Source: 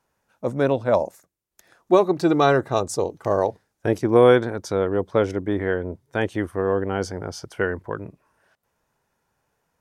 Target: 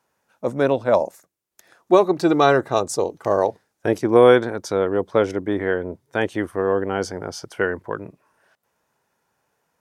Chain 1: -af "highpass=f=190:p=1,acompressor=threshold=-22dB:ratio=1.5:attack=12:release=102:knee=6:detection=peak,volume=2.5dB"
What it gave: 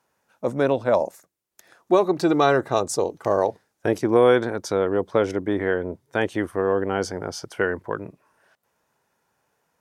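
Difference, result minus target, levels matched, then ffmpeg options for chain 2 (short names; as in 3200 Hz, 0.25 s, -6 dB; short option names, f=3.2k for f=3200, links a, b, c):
compressor: peak gain reduction +4 dB
-af "highpass=f=190:p=1,volume=2.5dB"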